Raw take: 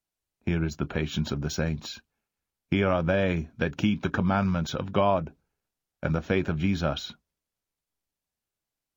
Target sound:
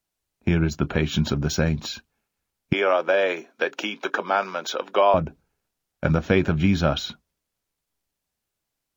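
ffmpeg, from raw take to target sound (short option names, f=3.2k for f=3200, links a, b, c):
-filter_complex "[0:a]asettb=1/sr,asplit=3[a][b][c];[a]atrim=end=2.734[d];[b]atrim=start=2.73:end=5.14,asetpts=PTS-STARTPTS,afade=t=in:d=0.004:c=qsin,afade=t=out:st=2.406:d=0.004:c=qsin,highpass=f=380:w=0.5412,highpass=f=380:w=1.3066[e];[c]atrim=start=5.136[f];[d][e]acrossfade=d=0.004:c1=hsin:c2=qsin[g];[g][f]acrossfade=d=0.004:c1=qsin:c2=hsin,volume=6dB"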